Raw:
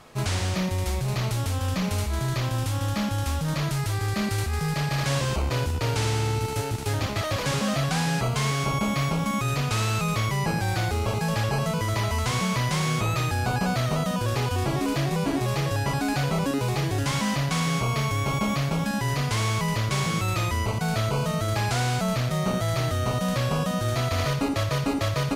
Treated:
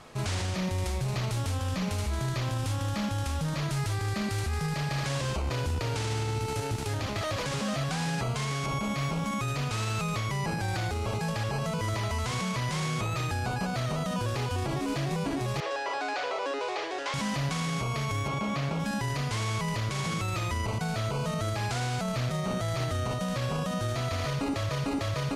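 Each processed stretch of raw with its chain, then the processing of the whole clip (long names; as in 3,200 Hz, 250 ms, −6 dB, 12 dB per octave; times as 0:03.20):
0:15.60–0:17.14: inverse Chebyshev high-pass filter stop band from 200 Hz + high-frequency loss of the air 120 metres
0:18.28–0:18.80: high-pass filter 120 Hz 6 dB per octave + high-shelf EQ 6,100 Hz −10.5 dB
whole clip: low-pass filter 11,000 Hz 12 dB per octave; brickwall limiter −22.5 dBFS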